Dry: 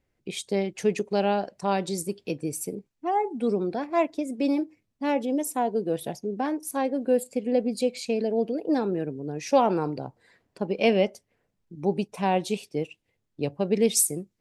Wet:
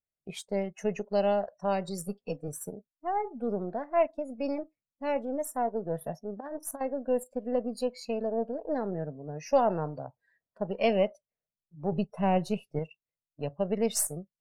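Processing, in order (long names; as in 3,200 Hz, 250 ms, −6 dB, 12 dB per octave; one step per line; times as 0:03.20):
gain on one half-wave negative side −3 dB
thirty-one-band graphic EQ 160 Hz +6 dB, 315 Hz −7 dB, 630 Hz +9 dB
0:06.40–0:06.81: compressor whose output falls as the input rises −31 dBFS, ratio −0.5
0:11.92–0:12.79: low-shelf EQ 270 Hz +8 dB
noise reduction from a noise print of the clip's start 20 dB
0:02.06–0:02.48: comb filter 4.1 ms, depth 71%
level −5.5 dB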